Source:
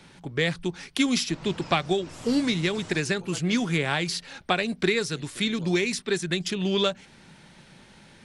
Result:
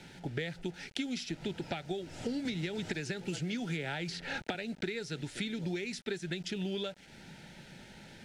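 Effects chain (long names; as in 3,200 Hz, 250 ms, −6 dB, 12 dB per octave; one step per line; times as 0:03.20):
downward compressor 8 to 1, threshold −33 dBFS, peak gain reduction 15.5 dB
bit reduction 9 bits
Butterworth band-reject 1,100 Hz, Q 3.1
high-frequency loss of the air 63 metres
0:02.45–0:04.55: multiband upward and downward compressor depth 100%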